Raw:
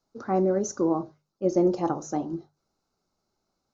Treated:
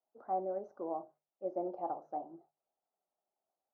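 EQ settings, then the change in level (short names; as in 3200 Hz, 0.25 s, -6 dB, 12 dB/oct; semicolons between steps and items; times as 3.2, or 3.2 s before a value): band-pass 700 Hz, Q 3.9; air absorption 230 m; -3.0 dB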